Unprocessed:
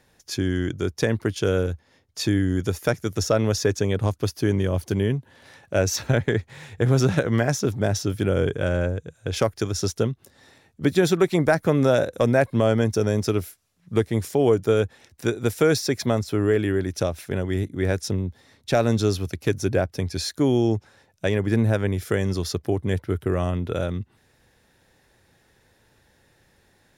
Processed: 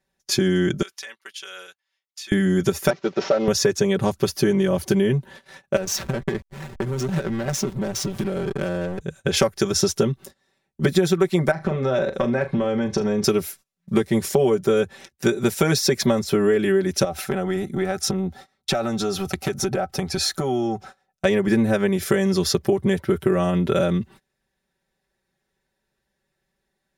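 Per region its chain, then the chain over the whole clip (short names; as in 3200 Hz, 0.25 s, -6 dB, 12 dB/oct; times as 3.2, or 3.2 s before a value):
0.82–2.32 HPF 1400 Hz + bell 3000 Hz +4 dB 0.68 oct + compressor 8:1, threshold -42 dBFS
2.9–3.48 CVSD 32 kbps + HPF 320 Hz + high shelf 2300 Hz -9.5 dB
5.76–9.01 high shelf 8900 Hz +8.5 dB + compressor 10:1, threshold -28 dBFS + backlash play -33 dBFS
11.51–13.24 LPF 4100 Hz + compressor 12:1, threshold -25 dBFS + flutter echo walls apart 6.6 m, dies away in 0.21 s
17.04–21.25 small resonant body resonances 760/1300 Hz, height 14 dB + compressor 12:1, threshold -27 dBFS
whole clip: gate -47 dBFS, range -25 dB; comb 5.2 ms, depth 98%; compressor, threshold -22 dBFS; gain +6.5 dB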